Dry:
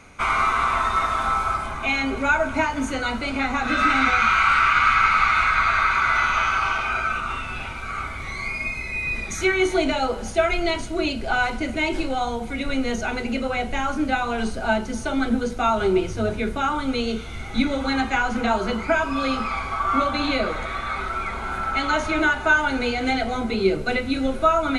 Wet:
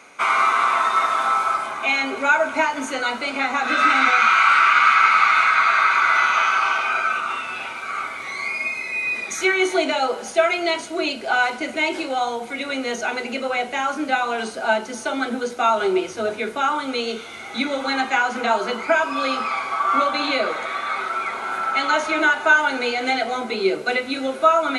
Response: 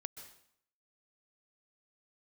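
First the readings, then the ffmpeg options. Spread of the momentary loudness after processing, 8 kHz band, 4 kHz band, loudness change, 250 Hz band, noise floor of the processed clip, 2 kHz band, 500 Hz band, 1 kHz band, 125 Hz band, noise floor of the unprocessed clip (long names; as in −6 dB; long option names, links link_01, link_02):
11 LU, +3.0 dB, +3.0 dB, +2.5 dB, −3.5 dB, −34 dBFS, +3.0 dB, +1.5 dB, +3.0 dB, below −15 dB, −32 dBFS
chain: -af "highpass=380,volume=3dB"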